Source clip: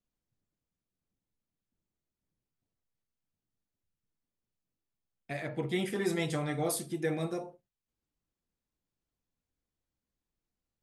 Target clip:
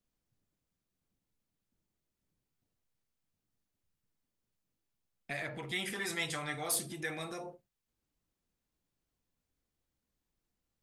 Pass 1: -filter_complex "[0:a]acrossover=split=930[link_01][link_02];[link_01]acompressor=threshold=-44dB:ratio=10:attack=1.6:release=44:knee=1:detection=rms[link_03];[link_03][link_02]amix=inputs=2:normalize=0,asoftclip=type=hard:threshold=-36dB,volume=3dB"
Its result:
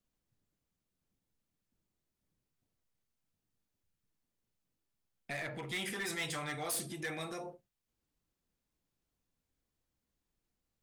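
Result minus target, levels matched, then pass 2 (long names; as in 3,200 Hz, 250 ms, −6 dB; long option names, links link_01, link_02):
hard clipping: distortion +16 dB
-filter_complex "[0:a]acrossover=split=930[link_01][link_02];[link_01]acompressor=threshold=-44dB:ratio=10:attack=1.6:release=44:knee=1:detection=rms[link_03];[link_03][link_02]amix=inputs=2:normalize=0,asoftclip=type=hard:threshold=-27dB,volume=3dB"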